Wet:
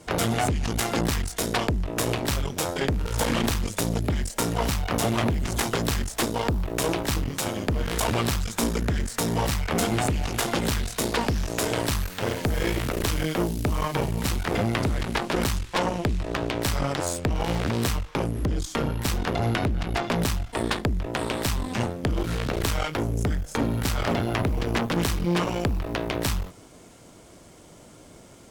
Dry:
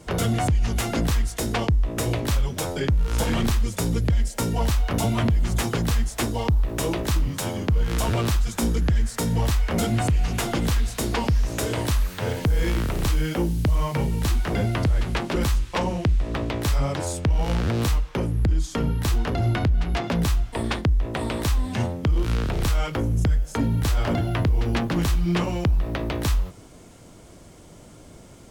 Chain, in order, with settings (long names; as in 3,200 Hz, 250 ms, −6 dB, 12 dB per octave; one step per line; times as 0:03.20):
harmonic generator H 4 −11 dB, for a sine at −14 dBFS
low-shelf EQ 160 Hz −7.5 dB